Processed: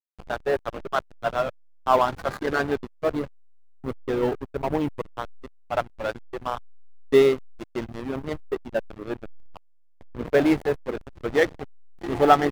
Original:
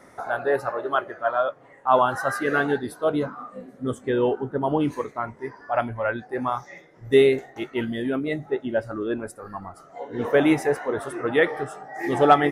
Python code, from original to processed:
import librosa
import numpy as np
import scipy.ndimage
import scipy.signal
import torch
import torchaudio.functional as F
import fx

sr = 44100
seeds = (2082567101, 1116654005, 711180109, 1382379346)

y = fx.backlash(x, sr, play_db=-19.0)
y = fx.quant_float(y, sr, bits=4)